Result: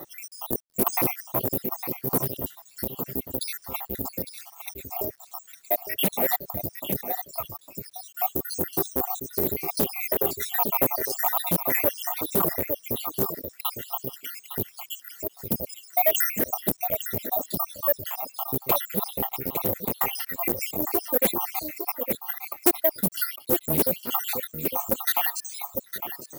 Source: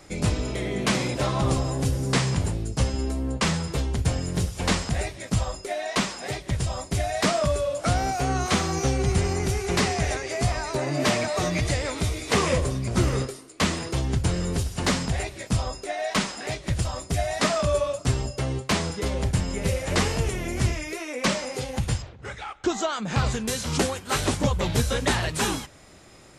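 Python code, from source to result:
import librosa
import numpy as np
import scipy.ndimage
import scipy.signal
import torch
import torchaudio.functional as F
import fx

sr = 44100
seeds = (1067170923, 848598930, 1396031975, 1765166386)

p1 = fx.spec_dropout(x, sr, seeds[0], share_pct=84)
p2 = fx.tilt_eq(p1, sr, slope=-3.5)
p3 = fx.rider(p2, sr, range_db=10, speed_s=0.5)
p4 = p3 + fx.echo_single(p3, sr, ms=857, db=-11.0, dry=0)
p5 = 10.0 ** (-16.0 / 20.0) * np.tanh(p4 / 10.0 ** (-16.0 / 20.0))
p6 = scipy.signal.sosfilt(scipy.signal.butter(2, 330.0, 'highpass', fs=sr, output='sos'), p5)
p7 = (np.kron(p6[::3], np.eye(3)[0]) * 3)[:len(p6)]
p8 = fx.peak_eq(p7, sr, hz=1600.0, db=-11.5, octaves=0.25)
p9 = 10.0 ** (-18.0 / 20.0) * (np.abs((p8 / 10.0 ** (-18.0 / 20.0) + 3.0) % 4.0 - 2.0) - 1.0)
p10 = p8 + F.gain(torch.from_numpy(p9), -5.0).numpy()
p11 = fx.quant_dither(p10, sr, seeds[1], bits=10, dither='none')
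p12 = fx.doppler_dist(p11, sr, depth_ms=0.35)
y = F.gain(torch.from_numpy(p12), 2.5).numpy()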